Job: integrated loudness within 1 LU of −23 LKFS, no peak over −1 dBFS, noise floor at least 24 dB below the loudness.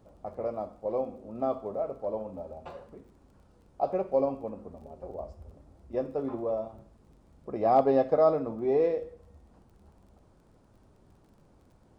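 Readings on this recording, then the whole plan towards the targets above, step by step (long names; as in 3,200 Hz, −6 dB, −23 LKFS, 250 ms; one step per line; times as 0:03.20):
crackle rate 17 per second; integrated loudness −29.5 LKFS; sample peak −12.0 dBFS; target loudness −23.0 LKFS
→ click removal
level +6.5 dB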